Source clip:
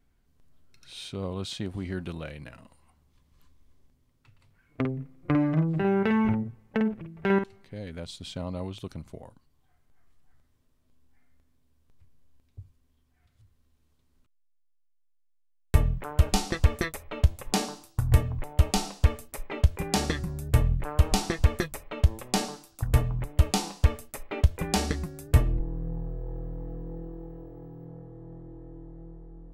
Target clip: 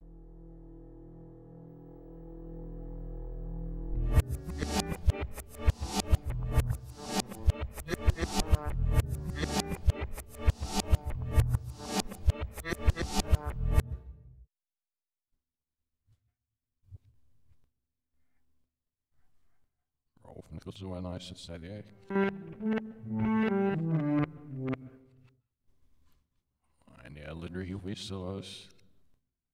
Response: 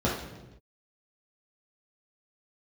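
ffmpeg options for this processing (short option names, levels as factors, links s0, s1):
-filter_complex "[0:a]areverse,agate=range=0.0224:threshold=0.002:ratio=3:detection=peak,asplit=2[s0][s1];[1:a]atrim=start_sample=2205,adelay=128[s2];[s1][s2]afir=irnorm=-1:irlink=0,volume=0.02[s3];[s0][s3]amix=inputs=2:normalize=0,volume=0.562"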